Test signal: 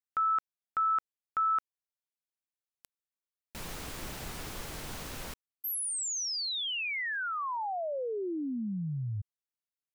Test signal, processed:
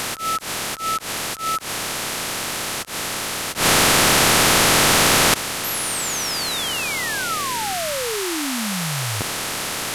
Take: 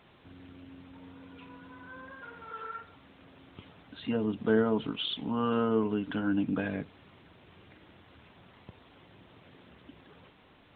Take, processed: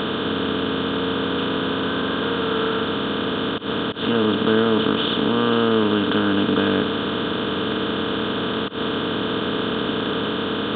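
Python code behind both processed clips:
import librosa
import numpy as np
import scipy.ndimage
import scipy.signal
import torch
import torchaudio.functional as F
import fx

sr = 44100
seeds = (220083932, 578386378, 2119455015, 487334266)

y = fx.bin_compress(x, sr, power=0.2)
y = fx.auto_swell(y, sr, attack_ms=120.0)
y = F.gain(torch.from_numpy(y), 4.5).numpy()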